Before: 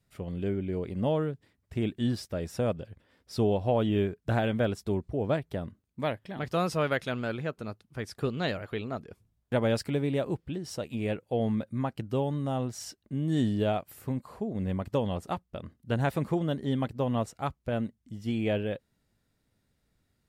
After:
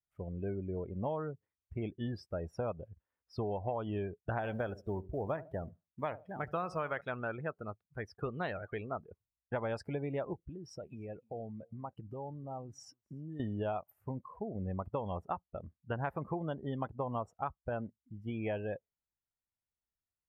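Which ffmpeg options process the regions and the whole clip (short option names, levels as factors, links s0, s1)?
-filter_complex "[0:a]asettb=1/sr,asplit=3[s0][s1][s2];[s0]atrim=end=4.374[s3];[s1]atrim=start=4.37:end=7.01,asetpts=PTS-STARTPTS,afade=t=in:d=0.004:c=qsin,afade=t=out:st=2.636:d=0.004:c=qsin,acrusher=bits=5:mode=log:mix=0:aa=0.000001,aecho=1:1:74|148|222:0.141|0.0509|0.0183,atrim=end_sample=116424[s4];[s2]atrim=start=7.006[s5];[s3][s4]acrossfade=d=0.004:c1=hsin:c2=qsin[s6];[s6][s5]acrossfade=d=0.004:c1=qsin:c2=hsin,asettb=1/sr,asplit=3[s7][s8][s9];[s7]atrim=end=10.334[s10];[s8]atrim=start=10.33:end=13.4,asetpts=PTS-STARTPTS,afade=t=in:d=0.004:c=qsin,afade=t=out:st=3.066:d=0.004:c=qsin,acompressor=threshold=0.0178:ratio=4:attack=3.2:release=140:knee=1:detection=peak,aecho=1:1:298:0.1,atrim=end_sample=135387[s11];[s9]atrim=start=13.396[s12];[s10][s11]acrossfade=d=0.004:c1=hsin:c2=qsin[s13];[s13][s12]acrossfade=d=0.004:c1=qsin:c2=hsin,afftdn=nr=24:nf=-40,equalizer=f=125:t=o:w=1:g=-5,equalizer=f=250:t=o:w=1:g=-8,equalizer=f=500:t=o:w=1:g=-3,equalizer=f=1000:t=o:w=1:g=5,equalizer=f=4000:t=o:w=1:g=-11,equalizer=f=8000:t=o:w=1:g=-7,acompressor=threshold=0.0251:ratio=6"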